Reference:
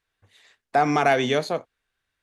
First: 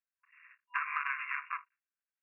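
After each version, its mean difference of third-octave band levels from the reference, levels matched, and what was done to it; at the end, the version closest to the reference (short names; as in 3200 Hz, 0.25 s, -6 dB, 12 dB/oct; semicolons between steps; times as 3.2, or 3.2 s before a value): 18.0 dB: cycle switcher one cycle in 3, muted; gate with hold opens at -51 dBFS; FFT band-pass 980–2800 Hz; compressor 6:1, threshold -33 dBFS, peak gain reduction 11 dB; gain +2 dB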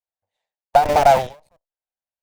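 11.0 dB: added harmonics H 6 -10 dB, 7 -18 dB, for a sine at -7 dBFS; band shelf 690 Hz +15.5 dB 1.1 oct; in parallel at -6 dB: Schmitt trigger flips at -13 dBFS; on the sum: ending taper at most 150 dB/s; gain -7.5 dB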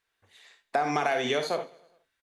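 4.0 dB: low shelf 200 Hz -11 dB; non-linear reverb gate 90 ms rising, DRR 6.5 dB; compressor, threshold -23 dBFS, peak gain reduction 8 dB; feedback echo 0.104 s, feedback 59%, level -24 dB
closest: third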